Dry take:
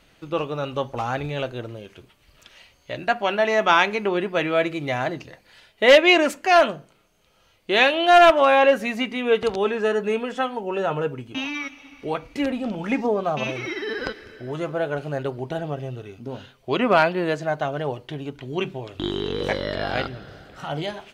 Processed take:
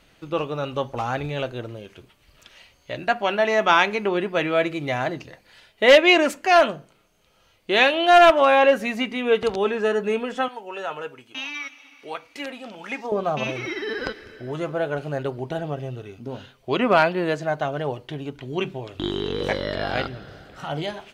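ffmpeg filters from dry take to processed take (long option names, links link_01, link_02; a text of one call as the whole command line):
ffmpeg -i in.wav -filter_complex "[0:a]asettb=1/sr,asplit=3[link_01][link_02][link_03];[link_01]atrim=end=10.484[link_04];[link_02]atrim=start=10.48:end=13.12,asetpts=PTS-STARTPTS,afade=type=in:duration=0.004:curve=qsin,afade=type=out:start_time=2.636:duration=0.004:curve=qsin,highpass=frequency=1200:poles=1[link_05];[link_03]atrim=start=13.116[link_06];[link_04][link_05]acrossfade=duration=0.004:curve1=hsin:curve2=qsin[link_07];[link_07][link_06]acrossfade=duration=0.004:curve1=qsin:curve2=hsin" out.wav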